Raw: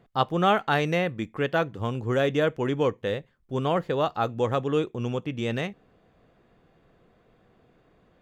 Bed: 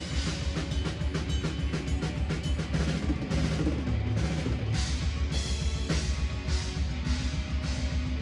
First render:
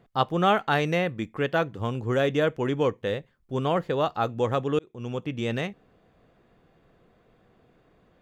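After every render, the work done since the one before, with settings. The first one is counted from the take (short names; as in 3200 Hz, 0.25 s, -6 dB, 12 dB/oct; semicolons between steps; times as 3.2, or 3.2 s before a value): 4.79–5.25 fade in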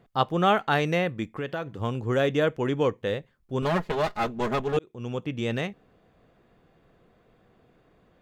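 1.34–1.77 compressor 5:1, threshold -27 dBFS; 3.62–4.77 minimum comb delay 4.8 ms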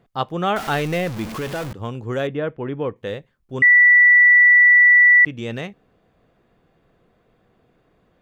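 0.56–1.73 zero-crossing step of -26 dBFS; 2.27–2.96 air absorption 390 m; 3.62–5.25 bleep 1960 Hz -8 dBFS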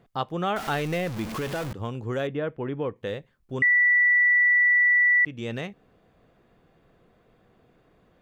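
compressor 1.5:1, threshold -33 dBFS, peak gain reduction 8 dB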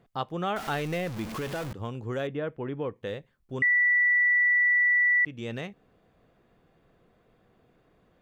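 gain -3 dB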